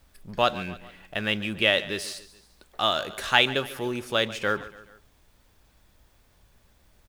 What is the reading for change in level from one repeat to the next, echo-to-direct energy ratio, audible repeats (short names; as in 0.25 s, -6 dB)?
-6.0 dB, -16.0 dB, 3